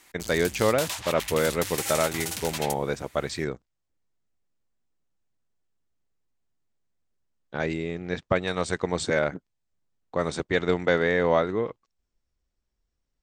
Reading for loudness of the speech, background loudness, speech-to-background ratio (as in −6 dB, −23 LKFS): −27.0 LKFS, −32.0 LKFS, 5.0 dB